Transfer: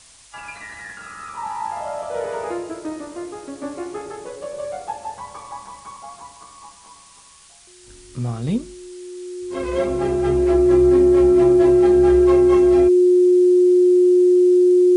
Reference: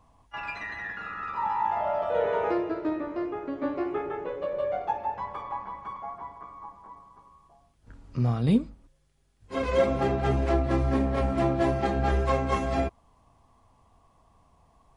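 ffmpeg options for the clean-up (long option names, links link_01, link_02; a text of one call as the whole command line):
ffmpeg -i in.wav -af "bandreject=frequency=360:width=30,afftdn=noise_reduction=17:noise_floor=-45" out.wav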